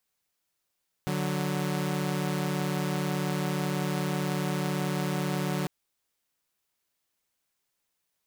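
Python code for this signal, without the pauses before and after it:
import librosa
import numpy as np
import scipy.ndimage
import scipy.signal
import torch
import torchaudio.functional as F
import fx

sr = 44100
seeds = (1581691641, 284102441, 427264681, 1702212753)

y = fx.chord(sr, length_s=4.6, notes=(50, 54), wave='saw', level_db=-27.5)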